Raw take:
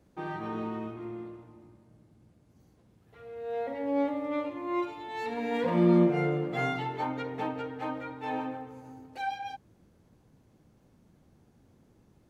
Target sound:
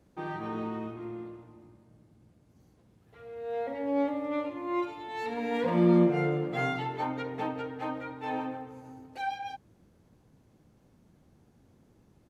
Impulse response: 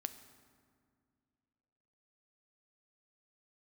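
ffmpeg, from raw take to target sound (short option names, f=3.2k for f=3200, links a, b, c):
-af "aresample=32000,aresample=44100"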